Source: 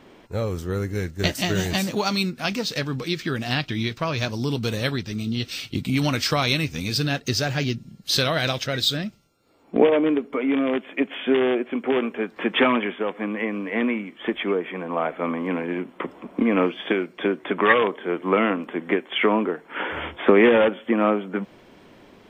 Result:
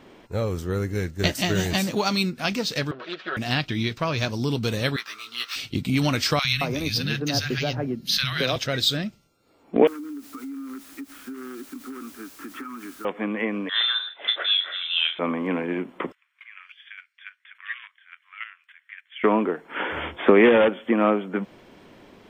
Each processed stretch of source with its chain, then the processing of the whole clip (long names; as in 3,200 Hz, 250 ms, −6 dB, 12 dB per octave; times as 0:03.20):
0:02.91–0:03.37: lower of the sound and its delayed copy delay 5.4 ms + loudspeaker in its box 450–3,500 Hz, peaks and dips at 870 Hz −8 dB, 1,400 Hz +6 dB, 2,200 Hz −7 dB
0:04.96–0:05.56: running median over 5 samples + high-pass with resonance 1,200 Hz, resonance Q 5.7 + double-tracking delay 16 ms −3.5 dB
0:06.39–0:08.56: parametric band 7,700 Hz −14 dB 0.25 octaves + three-band delay without the direct sound highs, lows, mids 50/220 ms, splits 160/1,300 Hz + multiband upward and downward compressor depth 40%
0:09.87–0:13.05: pair of resonant band-passes 610 Hz, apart 2.2 octaves + bit-depth reduction 8 bits, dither triangular + downward compressor 12 to 1, threshold −32 dBFS
0:13.69–0:15.19: voice inversion scrambler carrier 3,800 Hz + high-pass filter 610 Hz 6 dB per octave + double-tracking delay 35 ms −7.5 dB
0:16.12–0:19.24: Butterworth high-pass 1,600 Hz + high-shelf EQ 2,100 Hz −7.5 dB + square-wave tremolo 3.5 Hz, depth 65%, duty 10%
whole clip: no processing